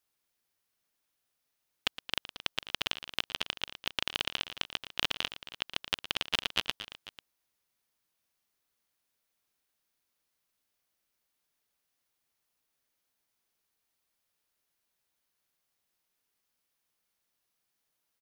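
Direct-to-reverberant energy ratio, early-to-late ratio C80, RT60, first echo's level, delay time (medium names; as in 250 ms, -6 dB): no reverb, no reverb, no reverb, -14.0 dB, 115 ms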